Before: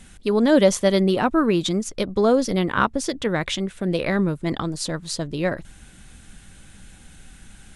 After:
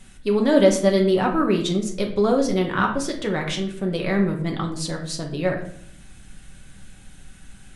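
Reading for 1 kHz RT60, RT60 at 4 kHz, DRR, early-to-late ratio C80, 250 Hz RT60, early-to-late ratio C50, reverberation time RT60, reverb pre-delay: 0.55 s, 0.45 s, 1.0 dB, 12.0 dB, 0.90 s, 8.0 dB, 0.65 s, 5 ms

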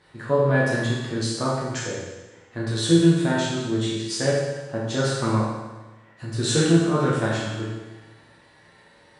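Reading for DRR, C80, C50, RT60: -7.0 dB, 2.0 dB, -0.5 dB, 1.2 s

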